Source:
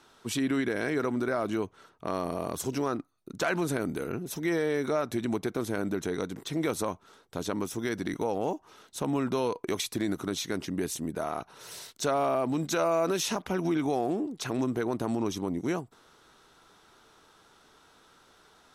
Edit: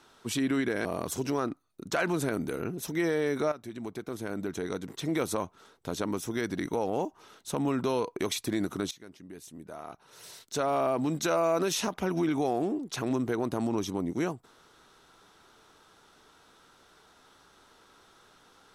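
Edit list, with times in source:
0.85–2.33 cut
5–6.59 fade in, from -13 dB
10.39–12.31 fade in quadratic, from -17 dB

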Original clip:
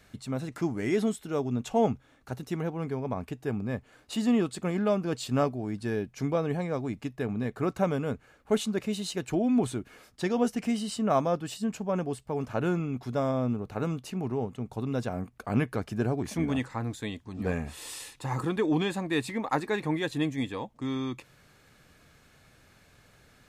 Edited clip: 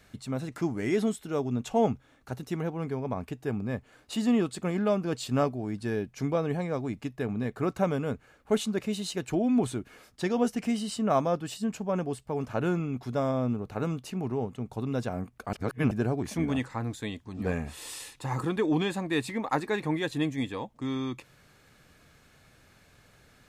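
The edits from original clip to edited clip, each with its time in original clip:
15.53–15.91 reverse

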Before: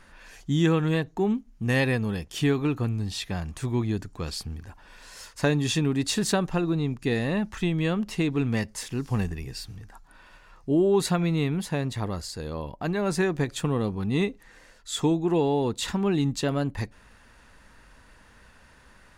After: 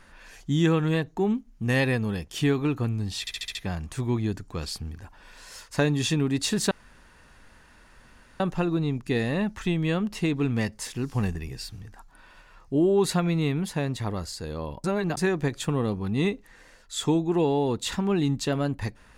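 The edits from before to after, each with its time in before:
3.2 stutter 0.07 s, 6 plays
6.36 insert room tone 1.69 s
12.8–13.13 reverse

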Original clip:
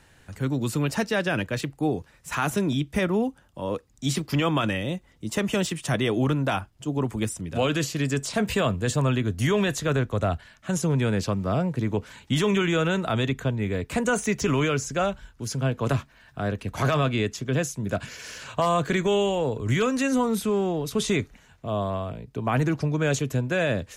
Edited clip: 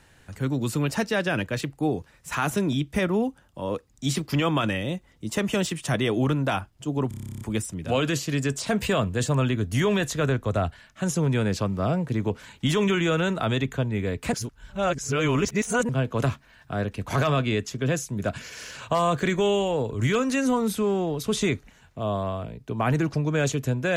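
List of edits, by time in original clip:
7.08 stutter 0.03 s, 12 plays
14–15.56 reverse

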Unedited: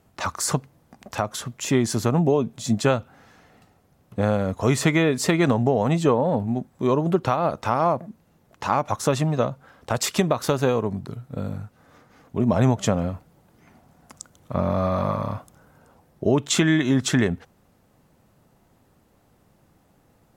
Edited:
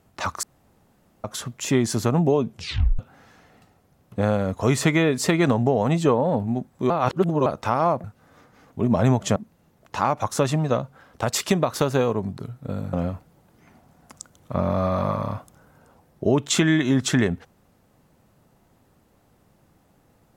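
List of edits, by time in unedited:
0.43–1.24 room tone
2.49 tape stop 0.50 s
6.9–7.46 reverse
11.61–12.93 move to 8.04

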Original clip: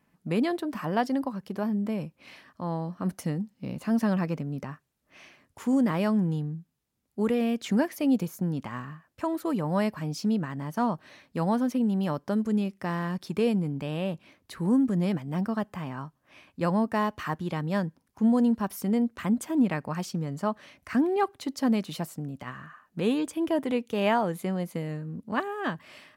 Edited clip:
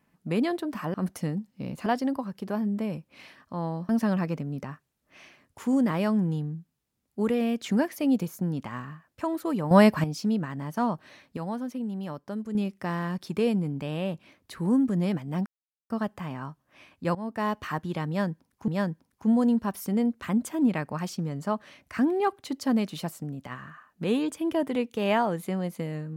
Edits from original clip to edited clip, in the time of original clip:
2.97–3.89 move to 0.94
9.71–10.04 gain +9.5 dB
11.37–12.55 gain -7 dB
15.46 insert silence 0.44 s
16.71–17.08 fade in, from -17.5 dB
17.64–18.24 loop, 2 plays

